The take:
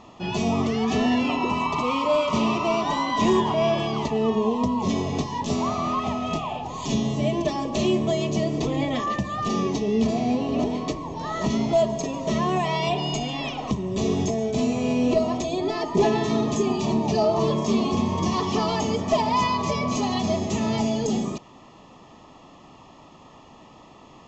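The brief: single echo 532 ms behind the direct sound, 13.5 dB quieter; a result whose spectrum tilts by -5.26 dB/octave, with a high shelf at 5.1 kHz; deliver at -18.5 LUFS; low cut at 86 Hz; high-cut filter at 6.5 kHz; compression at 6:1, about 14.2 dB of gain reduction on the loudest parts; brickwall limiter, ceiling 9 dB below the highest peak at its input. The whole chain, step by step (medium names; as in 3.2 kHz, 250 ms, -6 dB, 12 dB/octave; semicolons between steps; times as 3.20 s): high-pass 86 Hz; low-pass 6.5 kHz; treble shelf 5.1 kHz -5.5 dB; compression 6:1, threshold -32 dBFS; peak limiter -30 dBFS; delay 532 ms -13.5 dB; trim +19.5 dB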